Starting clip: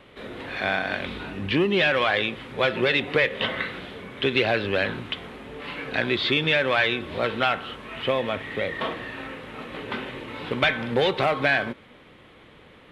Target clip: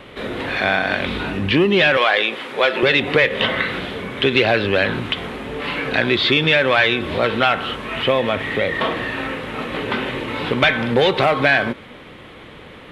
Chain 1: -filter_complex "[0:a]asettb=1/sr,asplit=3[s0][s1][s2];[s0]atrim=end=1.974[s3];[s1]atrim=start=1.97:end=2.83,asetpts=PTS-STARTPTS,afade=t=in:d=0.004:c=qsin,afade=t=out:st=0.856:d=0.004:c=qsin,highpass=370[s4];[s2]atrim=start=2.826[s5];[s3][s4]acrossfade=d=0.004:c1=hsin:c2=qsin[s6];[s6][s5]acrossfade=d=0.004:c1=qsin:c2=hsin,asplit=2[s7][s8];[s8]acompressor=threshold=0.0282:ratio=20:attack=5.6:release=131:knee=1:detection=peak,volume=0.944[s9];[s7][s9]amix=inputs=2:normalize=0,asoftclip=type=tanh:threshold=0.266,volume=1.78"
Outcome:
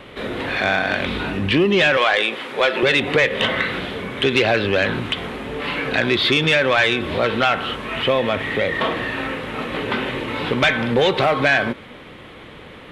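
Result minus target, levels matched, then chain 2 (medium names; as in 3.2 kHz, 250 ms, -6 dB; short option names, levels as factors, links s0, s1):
saturation: distortion +15 dB
-filter_complex "[0:a]asettb=1/sr,asplit=3[s0][s1][s2];[s0]atrim=end=1.974[s3];[s1]atrim=start=1.97:end=2.83,asetpts=PTS-STARTPTS,afade=t=in:d=0.004:c=qsin,afade=t=out:st=0.856:d=0.004:c=qsin,highpass=370[s4];[s2]atrim=start=2.826[s5];[s3][s4]acrossfade=d=0.004:c1=hsin:c2=qsin[s6];[s6][s5]acrossfade=d=0.004:c1=qsin:c2=hsin,asplit=2[s7][s8];[s8]acompressor=threshold=0.0282:ratio=20:attack=5.6:release=131:knee=1:detection=peak,volume=0.944[s9];[s7][s9]amix=inputs=2:normalize=0,asoftclip=type=tanh:threshold=0.75,volume=1.78"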